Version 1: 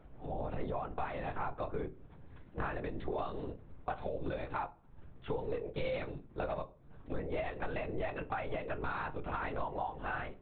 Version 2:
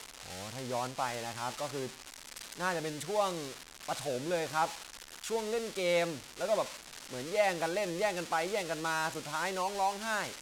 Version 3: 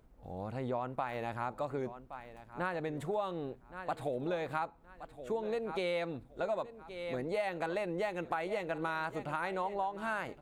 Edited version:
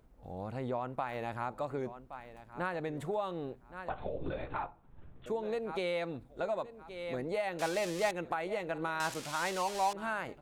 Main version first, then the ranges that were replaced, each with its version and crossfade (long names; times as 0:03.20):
3
0:03.89–0:05.26: punch in from 1
0:07.59–0:08.11: punch in from 2
0:09.00–0:09.93: punch in from 2